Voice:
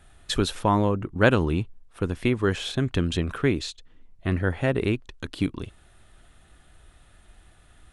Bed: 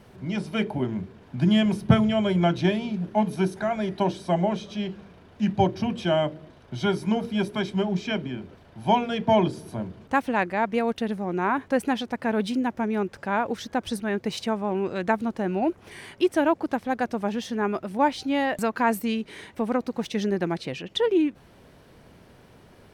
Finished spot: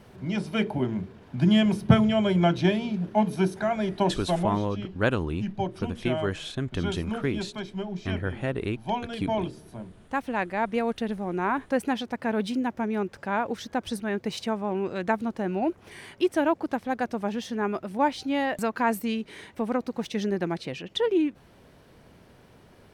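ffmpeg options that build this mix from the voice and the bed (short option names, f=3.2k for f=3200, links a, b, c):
-filter_complex "[0:a]adelay=3800,volume=-5.5dB[a];[1:a]volume=6dB,afade=t=out:st=4.09:d=0.56:silence=0.398107,afade=t=in:st=9.94:d=0.74:silence=0.501187[b];[a][b]amix=inputs=2:normalize=0"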